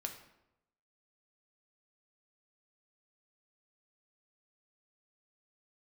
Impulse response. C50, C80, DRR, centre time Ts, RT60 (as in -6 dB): 8.5 dB, 11.5 dB, 3.5 dB, 18 ms, 0.85 s